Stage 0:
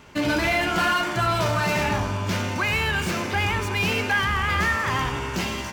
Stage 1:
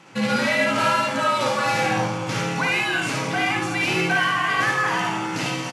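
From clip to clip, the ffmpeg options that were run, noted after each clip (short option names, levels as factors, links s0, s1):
-af "aecho=1:1:55|75:0.631|0.596,afftfilt=real='re*between(b*sr/4096,190,12000)':imag='im*between(b*sr/4096,190,12000)':win_size=4096:overlap=0.75,afreqshift=-81"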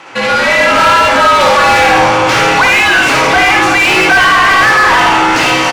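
-filter_complex "[0:a]equalizer=f=190:t=o:w=0.4:g=-13,dynaudnorm=f=440:g=3:m=3.76,asplit=2[s0][s1];[s1]highpass=f=720:p=1,volume=15.8,asoftclip=type=tanh:threshold=0.891[s2];[s0][s2]amix=inputs=2:normalize=0,lowpass=f=2400:p=1,volume=0.501,volume=1.12"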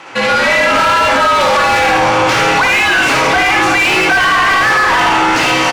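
-af "alimiter=limit=0.501:level=0:latency=1"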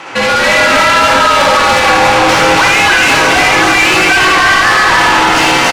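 -filter_complex "[0:a]asoftclip=type=tanh:threshold=0.211,asplit=2[s0][s1];[s1]aecho=0:1:284:0.668[s2];[s0][s2]amix=inputs=2:normalize=0,volume=2"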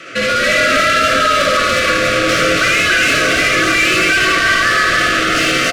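-af "asuperstop=centerf=890:order=20:qfactor=2.1,volume=0.631"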